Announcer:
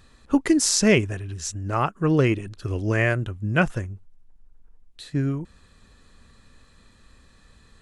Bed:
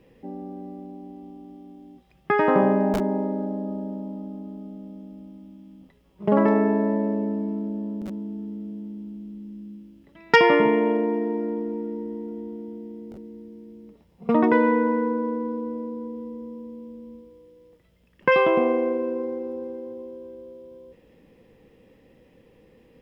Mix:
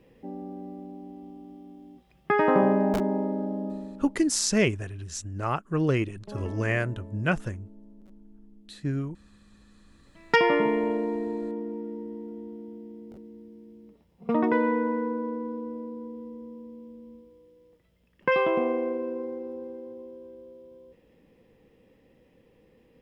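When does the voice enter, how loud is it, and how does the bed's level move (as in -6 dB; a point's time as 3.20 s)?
3.70 s, -5.0 dB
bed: 3.67 s -2 dB
4.40 s -21.5 dB
9.67 s -21.5 dB
10.19 s -5 dB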